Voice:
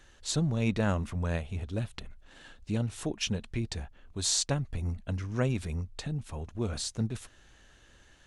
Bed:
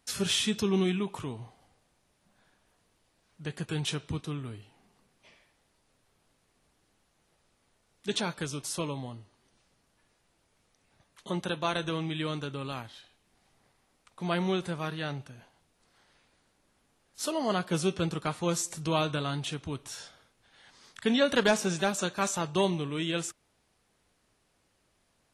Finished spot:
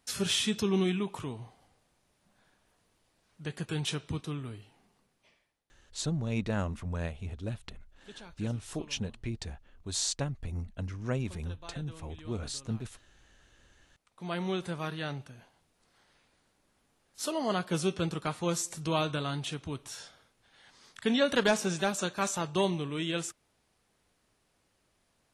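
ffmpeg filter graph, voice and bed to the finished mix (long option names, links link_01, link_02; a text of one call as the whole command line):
ffmpeg -i stem1.wav -i stem2.wav -filter_complex "[0:a]adelay=5700,volume=-3.5dB[link_01];[1:a]volume=16dB,afade=type=out:start_time=4.69:duration=0.97:silence=0.133352,afade=type=in:start_time=13.74:duration=1.02:silence=0.141254[link_02];[link_01][link_02]amix=inputs=2:normalize=0" out.wav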